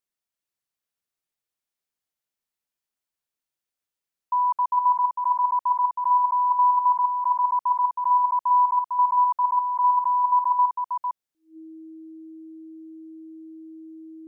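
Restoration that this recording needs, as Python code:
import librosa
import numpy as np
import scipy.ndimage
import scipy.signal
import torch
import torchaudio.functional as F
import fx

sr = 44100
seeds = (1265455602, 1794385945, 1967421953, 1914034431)

y = fx.notch(x, sr, hz=320.0, q=30.0)
y = fx.fix_echo_inverse(y, sr, delay_ms=452, level_db=-4.5)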